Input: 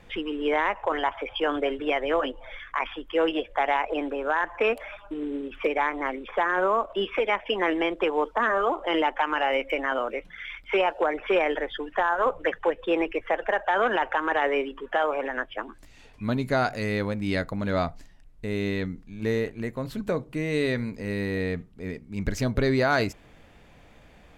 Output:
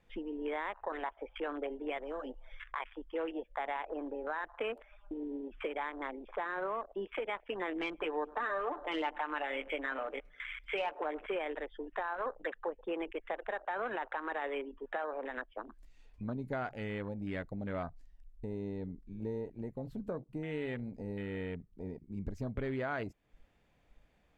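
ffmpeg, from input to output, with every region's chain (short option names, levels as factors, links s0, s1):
-filter_complex "[0:a]asettb=1/sr,asplit=3[s0][s1][s2];[s0]atrim=end=1.984[s3];[s1]atrim=start=1.98:end=2.64,asetpts=PTS-STARTPTS,afade=t=in:d=0.004:c=qsin,afade=t=out:st=0.656:d=0.004:c=qsin,highshelf=f=3400:g=7.5,acrossover=split=230|3000[s4][s5][s6];[s5]acompressor=threshold=0.0251:ratio=2:attack=3.2:release=140:knee=2.83:detection=peak[s7];[s4][s7][s6]amix=inputs=3:normalize=0[s8];[s2]atrim=start=2.636[s9];[s3][s8]acrossfade=d=0.004:c1=hsin:c2=qsin[s10];[s10][s9]acrossfade=d=0.004:c1=qsin:c2=hsin,asettb=1/sr,asplit=3[s11][s12][s13];[s11]atrim=end=7.754[s14];[s12]atrim=start=7.75:end=11.26,asetpts=PTS-STARTPTS,afade=t=in:d=0.004:c=qsin,afade=t=out:st=3.506:d=0.004:c=qsin,highshelf=f=2300:g=5,aecho=1:1:6.8:0.6,atrim=end_sample=154791,aecho=1:1:104|208|312|416:0.0891|0.0499|0.0279|0.0157,atrim=end_sample=154791[s15];[s13]atrim=start=11.256[s16];[s14][s15]acrossfade=d=0.004:c1=hsin:c2=qsin[s17];[s17][s16]acrossfade=d=0.004:c1=qsin:c2=hsin,afwtdn=0.0251,acompressor=threshold=0.00794:ratio=2,volume=0.841"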